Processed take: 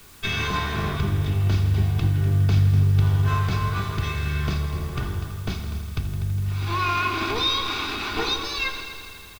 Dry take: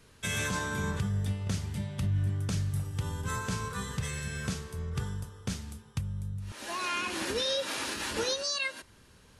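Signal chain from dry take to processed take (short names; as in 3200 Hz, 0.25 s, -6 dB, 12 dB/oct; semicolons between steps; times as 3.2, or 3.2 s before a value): minimum comb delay 0.81 ms; LPF 4500 Hz 24 dB/oct; comb 2.7 ms, depth 49%; in parallel at -6.5 dB: requantised 8-bit, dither triangular; on the sum: multi-head echo 82 ms, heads all three, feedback 63%, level -16 dB; on a send at -9 dB: reverb RT60 1.0 s, pre-delay 5 ms; on the sum: gain +4 dB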